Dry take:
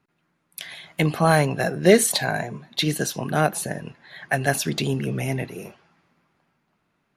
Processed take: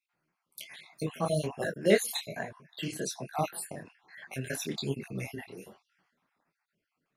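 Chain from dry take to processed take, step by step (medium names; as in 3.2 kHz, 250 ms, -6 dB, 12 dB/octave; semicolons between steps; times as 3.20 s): random holes in the spectrogram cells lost 48%; bass shelf 130 Hz -8.5 dB; detune thickener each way 41 cents; trim -3 dB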